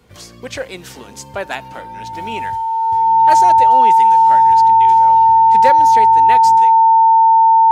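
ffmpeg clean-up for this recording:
-af "bandreject=f=900:w=30"

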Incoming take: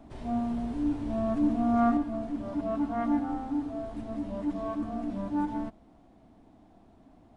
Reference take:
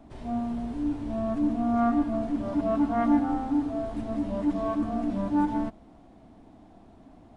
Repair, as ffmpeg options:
-af "asetnsamples=n=441:p=0,asendcmd='1.97 volume volume 5dB',volume=1"

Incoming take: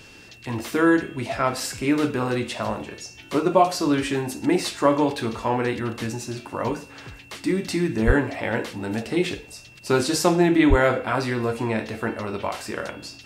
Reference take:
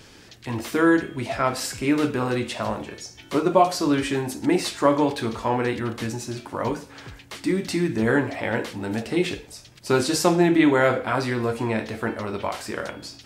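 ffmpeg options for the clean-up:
-filter_complex "[0:a]bandreject=f=2700:w=30,asplit=3[s0][s1][s2];[s0]afade=t=out:st=8.06:d=0.02[s3];[s1]highpass=f=140:w=0.5412,highpass=f=140:w=1.3066,afade=t=in:st=8.06:d=0.02,afade=t=out:st=8.18:d=0.02[s4];[s2]afade=t=in:st=8.18:d=0.02[s5];[s3][s4][s5]amix=inputs=3:normalize=0,asplit=3[s6][s7][s8];[s6]afade=t=out:st=10.69:d=0.02[s9];[s7]highpass=f=140:w=0.5412,highpass=f=140:w=1.3066,afade=t=in:st=10.69:d=0.02,afade=t=out:st=10.81:d=0.02[s10];[s8]afade=t=in:st=10.81:d=0.02[s11];[s9][s10][s11]amix=inputs=3:normalize=0"

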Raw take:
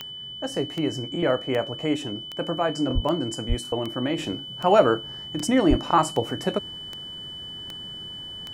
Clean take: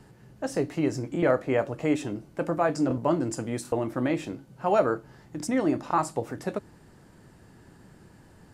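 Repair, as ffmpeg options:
-filter_complex "[0:a]adeclick=t=4,bandreject=f=3000:w=30,asplit=3[s0][s1][s2];[s0]afade=t=out:st=2.94:d=0.02[s3];[s1]highpass=f=140:w=0.5412,highpass=f=140:w=1.3066,afade=t=in:st=2.94:d=0.02,afade=t=out:st=3.06:d=0.02[s4];[s2]afade=t=in:st=3.06:d=0.02[s5];[s3][s4][s5]amix=inputs=3:normalize=0,asplit=3[s6][s7][s8];[s6]afade=t=out:st=3.48:d=0.02[s9];[s7]highpass=f=140:w=0.5412,highpass=f=140:w=1.3066,afade=t=in:st=3.48:d=0.02,afade=t=out:st=3.6:d=0.02[s10];[s8]afade=t=in:st=3.6:d=0.02[s11];[s9][s10][s11]amix=inputs=3:normalize=0,asplit=3[s12][s13][s14];[s12]afade=t=out:st=5.69:d=0.02[s15];[s13]highpass=f=140:w=0.5412,highpass=f=140:w=1.3066,afade=t=in:st=5.69:d=0.02,afade=t=out:st=5.81:d=0.02[s16];[s14]afade=t=in:st=5.81:d=0.02[s17];[s15][s16][s17]amix=inputs=3:normalize=0,asetnsamples=n=441:p=0,asendcmd='4.18 volume volume -5.5dB',volume=1"

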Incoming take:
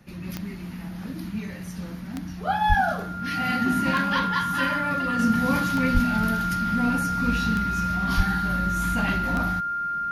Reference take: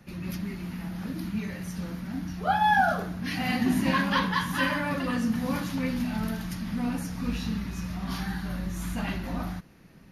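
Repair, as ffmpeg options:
-filter_complex "[0:a]adeclick=t=4,bandreject=f=1400:w=30,asplit=3[s0][s1][s2];[s0]afade=t=out:st=2.68:d=0.02[s3];[s1]highpass=f=140:w=0.5412,highpass=f=140:w=1.3066,afade=t=in:st=2.68:d=0.02,afade=t=out:st=2.8:d=0.02[s4];[s2]afade=t=in:st=2.8:d=0.02[s5];[s3][s4][s5]amix=inputs=3:normalize=0,asplit=3[s6][s7][s8];[s6]afade=t=out:st=5.93:d=0.02[s9];[s7]highpass=f=140:w=0.5412,highpass=f=140:w=1.3066,afade=t=in:st=5.93:d=0.02,afade=t=out:st=6.05:d=0.02[s10];[s8]afade=t=in:st=6.05:d=0.02[s11];[s9][s10][s11]amix=inputs=3:normalize=0,asplit=3[s12][s13][s14];[s12]afade=t=out:st=8.16:d=0.02[s15];[s13]highpass=f=140:w=0.5412,highpass=f=140:w=1.3066,afade=t=in:st=8.16:d=0.02,afade=t=out:st=8.28:d=0.02[s16];[s14]afade=t=in:st=8.28:d=0.02[s17];[s15][s16][s17]amix=inputs=3:normalize=0,asetnsamples=n=441:p=0,asendcmd='5.19 volume volume -5dB',volume=1"

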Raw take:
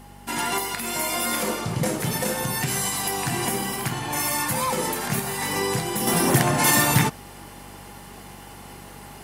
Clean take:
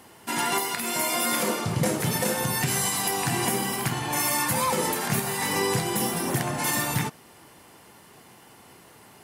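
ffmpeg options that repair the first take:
-af "bandreject=f=48.4:t=h:w=4,bandreject=f=96.8:t=h:w=4,bandreject=f=145.2:t=h:w=4,bandreject=f=193.6:t=h:w=4,bandreject=f=242:t=h:w=4,bandreject=f=820:w=30,asetnsamples=n=441:p=0,asendcmd='6.07 volume volume -7.5dB',volume=1"

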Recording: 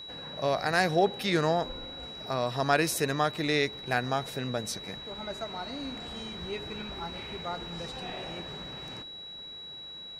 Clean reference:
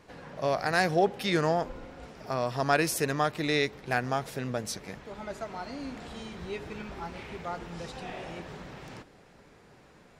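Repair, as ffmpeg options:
-af "bandreject=f=3900:w=30"

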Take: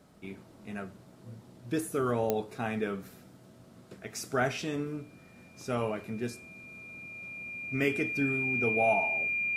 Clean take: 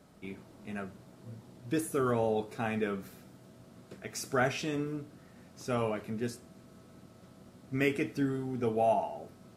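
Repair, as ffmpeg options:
-af "adeclick=t=4,bandreject=f=2400:w=30"

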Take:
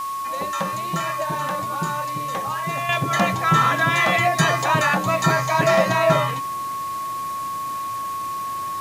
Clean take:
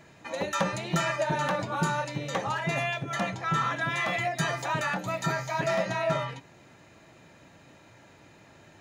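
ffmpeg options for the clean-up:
-af "bandreject=f=1100:w=30,afwtdn=0.0089,asetnsamples=n=441:p=0,asendcmd='2.89 volume volume -10dB',volume=1"

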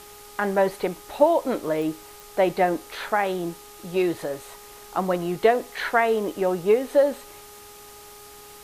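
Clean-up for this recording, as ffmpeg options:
-af "adeclick=t=4,bandreject=f=413.3:t=h:w=4,bandreject=f=826.6:t=h:w=4,bandreject=f=1239.9:t=h:w=4,afftdn=nr=23:nf=-45"

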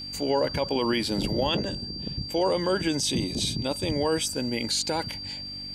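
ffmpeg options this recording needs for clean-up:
-af "bandreject=f=48.2:t=h:w=4,bandreject=f=96.4:t=h:w=4,bandreject=f=144.6:t=h:w=4,bandreject=f=192.8:t=h:w=4,bandreject=f=241:t=h:w=4,bandreject=f=289.2:t=h:w=4,bandreject=f=4700:w=30"

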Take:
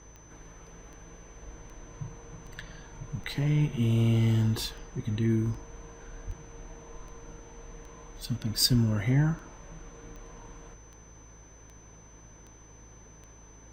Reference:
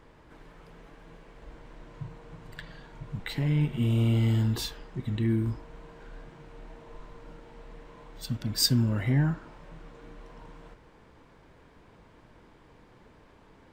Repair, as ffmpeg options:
-filter_complex "[0:a]adeclick=t=4,bandreject=f=53.8:t=h:w=4,bandreject=f=107.6:t=h:w=4,bandreject=f=161.4:t=h:w=4,bandreject=f=6100:w=30,asplit=3[s0][s1][s2];[s0]afade=t=out:st=6.26:d=0.02[s3];[s1]highpass=f=140:w=0.5412,highpass=f=140:w=1.3066,afade=t=in:st=6.26:d=0.02,afade=t=out:st=6.38:d=0.02[s4];[s2]afade=t=in:st=6.38:d=0.02[s5];[s3][s4][s5]amix=inputs=3:normalize=0,asplit=3[s6][s7][s8];[s6]afade=t=out:st=8.71:d=0.02[s9];[s7]highpass=f=140:w=0.5412,highpass=f=140:w=1.3066,afade=t=in:st=8.71:d=0.02,afade=t=out:st=8.83:d=0.02[s10];[s8]afade=t=in:st=8.83:d=0.02[s11];[s9][s10][s11]amix=inputs=3:normalize=0"

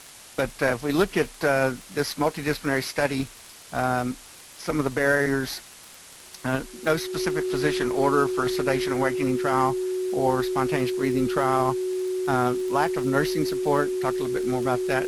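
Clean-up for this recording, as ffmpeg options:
-af "adeclick=t=4,bandreject=f=370:w=30,afwtdn=0.0063"

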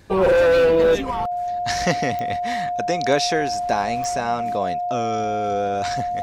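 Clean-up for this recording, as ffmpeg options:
-af "adeclick=t=4,bandreject=f=710:w=30"

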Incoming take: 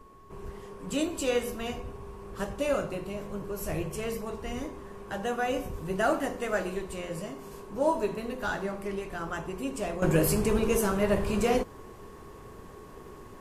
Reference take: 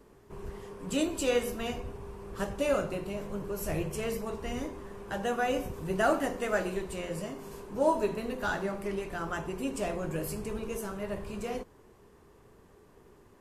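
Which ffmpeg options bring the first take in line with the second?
-filter_complex "[0:a]bandreject=f=1100:w=30,asplit=3[s0][s1][s2];[s0]afade=t=out:st=5.71:d=0.02[s3];[s1]highpass=f=140:w=0.5412,highpass=f=140:w=1.3066,afade=t=in:st=5.71:d=0.02,afade=t=out:st=5.83:d=0.02[s4];[s2]afade=t=in:st=5.83:d=0.02[s5];[s3][s4][s5]amix=inputs=3:normalize=0,agate=range=0.0891:threshold=0.0126,asetnsamples=n=441:p=0,asendcmd='10.02 volume volume -10.5dB',volume=1"

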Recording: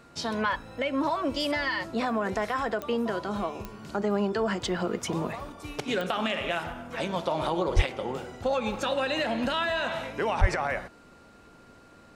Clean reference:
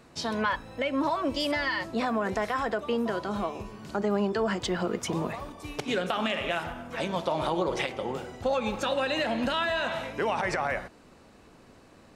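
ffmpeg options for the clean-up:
-filter_complex "[0:a]adeclick=t=4,bandreject=f=1400:w=30,asplit=3[s0][s1][s2];[s0]afade=t=out:st=7.75:d=0.02[s3];[s1]highpass=f=140:w=0.5412,highpass=f=140:w=1.3066,afade=t=in:st=7.75:d=0.02,afade=t=out:st=7.87:d=0.02[s4];[s2]afade=t=in:st=7.87:d=0.02[s5];[s3][s4][s5]amix=inputs=3:normalize=0,asplit=3[s6][s7][s8];[s6]afade=t=out:st=10.4:d=0.02[s9];[s7]highpass=f=140:w=0.5412,highpass=f=140:w=1.3066,afade=t=in:st=10.4:d=0.02,afade=t=out:st=10.52:d=0.02[s10];[s8]afade=t=in:st=10.52:d=0.02[s11];[s9][s10][s11]amix=inputs=3:normalize=0"

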